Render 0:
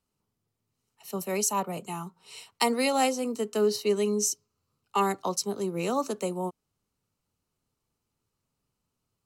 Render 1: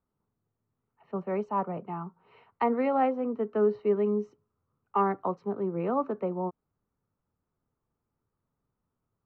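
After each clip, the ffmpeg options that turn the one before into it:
-af "lowpass=f=1700:w=0.5412,lowpass=f=1700:w=1.3066"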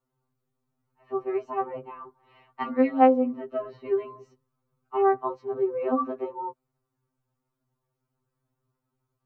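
-af "afftfilt=real='re*2.45*eq(mod(b,6),0)':imag='im*2.45*eq(mod(b,6),0)':win_size=2048:overlap=0.75,volume=1.68"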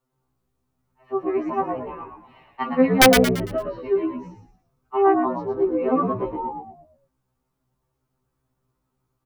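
-filter_complex "[0:a]aeval=exprs='(mod(2.99*val(0)+1,2)-1)/2.99':c=same,asplit=6[s0][s1][s2][s3][s4][s5];[s1]adelay=113,afreqshift=-72,volume=0.531[s6];[s2]adelay=226,afreqshift=-144,volume=0.211[s7];[s3]adelay=339,afreqshift=-216,volume=0.0851[s8];[s4]adelay=452,afreqshift=-288,volume=0.0339[s9];[s5]adelay=565,afreqshift=-360,volume=0.0136[s10];[s0][s6][s7][s8][s9][s10]amix=inputs=6:normalize=0,volume=1.58"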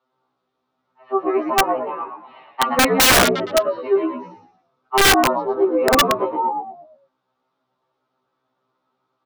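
-af "highpass=300,equalizer=f=600:t=q:w=4:g=5,equalizer=f=850:t=q:w=4:g=4,equalizer=f=1300:t=q:w=4:g=7,equalizer=f=3600:t=q:w=4:g=6,lowpass=f=4900:w=0.5412,lowpass=f=4900:w=1.3066,aeval=exprs='(mod(3.98*val(0)+1,2)-1)/3.98':c=same,volume=1.68"

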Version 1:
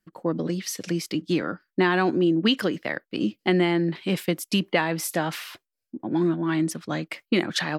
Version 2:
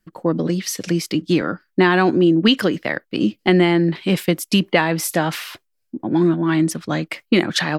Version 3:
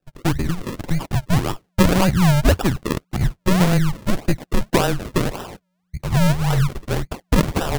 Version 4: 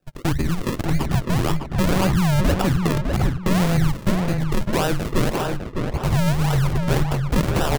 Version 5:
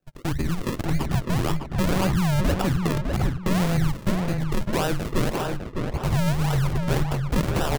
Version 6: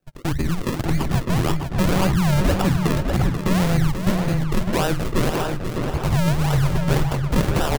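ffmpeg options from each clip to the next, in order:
-af "lowshelf=f=71:g=9,volume=2"
-af "lowpass=5900,afreqshift=-180,acrusher=samples=40:mix=1:aa=0.000001:lfo=1:lforange=40:lforate=1.8"
-filter_complex "[0:a]asplit=2[s0][s1];[s1]acompressor=threshold=0.0708:ratio=6,volume=0.708[s2];[s0][s2]amix=inputs=2:normalize=0,alimiter=limit=0.211:level=0:latency=1:release=15,asplit=2[s3][s4];[s4]adelay=605,lowpass=f=2400:p=1,volume=0.631,asplit=2[s5][s6];[s6]adelay=605,lowpass=f=2400:p=1,volume=0.32,asplit=2[s7][s8];[s8]adelay=605,lowpass=f=2400:p=1,volume=0.32,asplit=2[s9][s10];[s10]adelay=605,lowpass=f=2400:p=1,volume=0.32[s11];[s3][s5][s7][s9][s11]amix=inputs=5:normalize=0"
-af "dynaudnorm=f=210:g=3:m=1.58,volume=0.447"
-af "aecho=1:1:486:0.355,volume=1.41"

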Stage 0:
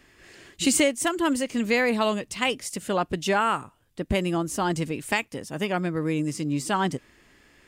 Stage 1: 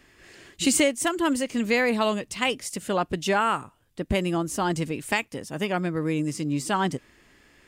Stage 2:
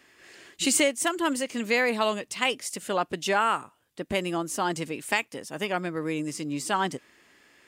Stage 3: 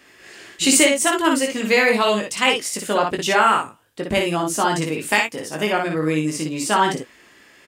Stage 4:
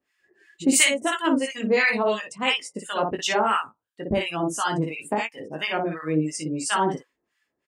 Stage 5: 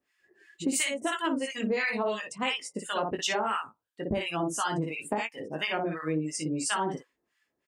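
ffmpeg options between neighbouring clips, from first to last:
-af anull
-af "highpass=f=370:p=1"
-af "aecho=1:1:19|58|76:0.562|0.631|0.211,volume=2"
-filter_complex "[0:a]afftdn=nr=22:nf=-33,acrossover=split=960[s0][s1];[s0]aeval=exprs='val(0)*(1-1/2+1/2*cos(2*PI*2.9*n/s))':c=same[s2];[s1]aeval=exprs='val(0)*(1-1/2-1/2*cos(2*PI*2.9*n/s))':c=same[s3];[s2][s3]amix=inputs=2:normalize=0"
-af "acompressor=threshold=0.0631:ratio=6,volume=0.841"

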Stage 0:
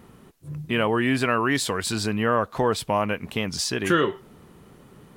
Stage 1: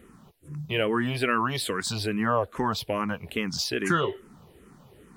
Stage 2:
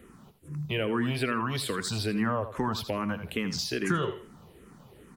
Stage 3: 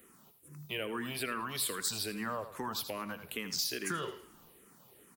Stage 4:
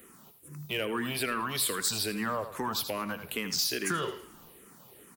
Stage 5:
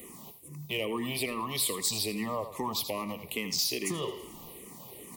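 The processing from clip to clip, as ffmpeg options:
-filter_complex "[0:a]asplit=2[s0][s1];[s1]afreqshift=-2.4[s2];[s0][s2]amix=inputs=2:normalize=1"
-filter_complex "[0:a]aecho=1:1:81|162|243:0.237|0.0498|0.0105,acrossover=split=290[s0][s1];[s1]acompressor=threshold=0.0251:ratio=2[s2];[s0][s2]amix=inputs=2:normalize=0"
-filter_complex "[0:a]aemphasis=mode=production:type=bsi,asplit=6[s0][s1][s2][s3][s4][s5];[s1]adelay=109,afreqshift=-38,volume=0.075[s6];[s2]adelay=218,afreqshift=-76,volume=0.0473[s7];[s3]adelay=327,afreqshift=-114,volume=0.0299[s8];[s4]adelay=436,afreqshift=-152,volume=0.0188[s9];[s5]adelay=545,afreqshift=-190,volume=0.0117[s10];[s0][s6][s7][s8][s9][s10]amix=inputs=6:normalize=0,volume=0.447"
-af "asoftclip=type=tanh:threshold=0.0531,volume=2"
-af "areverse,acompressor=mode=upward:threshold=0.0126:ratio=2.5,areverse,asuperstop=centerf=1500:order=8:qfactor=2.1"

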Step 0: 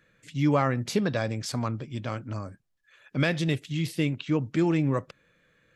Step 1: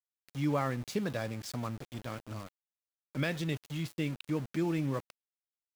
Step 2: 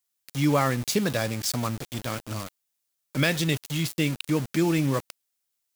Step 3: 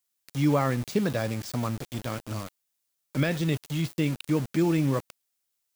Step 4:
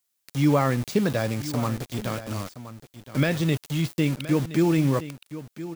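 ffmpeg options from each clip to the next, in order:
-af "aeval=exprs='val(0)*gte(abs(val(0)),0.0178)':c=same,volume=0.422"
-af "highshelf=f=3600:g=10.5,volume=2.51"
-af "deesser=0.65"
-af "aecho=1:1:1020:0.2,volume=1.41"

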